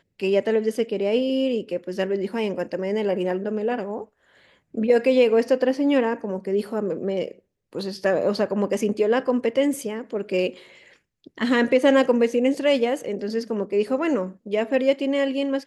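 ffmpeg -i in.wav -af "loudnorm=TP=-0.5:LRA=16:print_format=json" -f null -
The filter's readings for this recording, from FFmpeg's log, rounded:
"input_i" : "-23.1",
"input_tp" : "-5.6",
"input_lra" : "3.1",
"input_thresh" : "-33.5",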